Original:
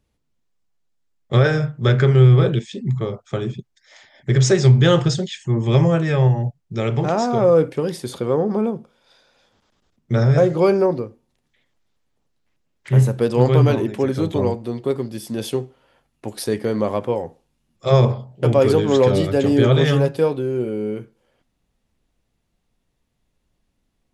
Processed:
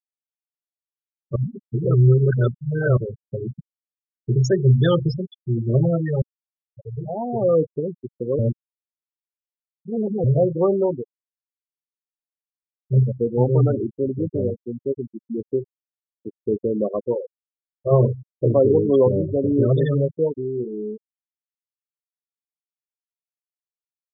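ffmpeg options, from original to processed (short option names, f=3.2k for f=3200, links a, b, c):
-filter_complex "[0:a]asettb=1/sr,asplit=3[a][b][c];[a]atrim=end=15.164[d];[b]atrim=start=15.16:end=19.08,asetpts=PTS-STARTPTS,afade=t=in:d=0.004:c=qsin,afade=t=out:st=3.916:d=0.004:c=qsin,equalizer=f=360:w=1.5:g=4[e];[c]atrim=start=19.076[f];[d][e]acrossfade=d=0.004:c1=hsin:c2=qsin[g];[g][f]acrossfade=d=0.004:c1=qsin:c2=hsin,asplit=6[h][i][j][k][l][m];[h]atrim=end=1.362[n];[i]atrim=start=1.358:end=2.972,asetpts=PTS-STARTPTS,areverse[o];[j]atrim=start=2.968:end=6.22,asetpts=PTS-STARTPTS,afade=t=out:st=3.248:d=0.004:c=hsin[p];[k]atrim=start=6.22:end=8.392,asetpts=PTS-STARTPTS,afade=t=in:d=1.39[q];[l]atrim=start=8.388:end=10.242,asetpts=PTS-STARTPTS,areverse[r];[m]atrim=start=10.238[s];[n][o]acrossfade=d=0.004:c1=hsin:c2=hsin[t];[p][q]concat=n=2:v=0:a=1[u];[t][u]acrossfade=d=0.004:c1=hsin:c2=hsin[v];[v][r]acrossfade=d=0.004:c1=hsin:c2=hsin[w];[w][s]acrossfade=d=0.004:c1=hsin:c2=hsin,afftfilt=real='re*gte(hypot(re,im),0.282)':imag='im*gte(hypot(re,im),0.282)':win_size=1024:overlap=0.75,volume=-3dB"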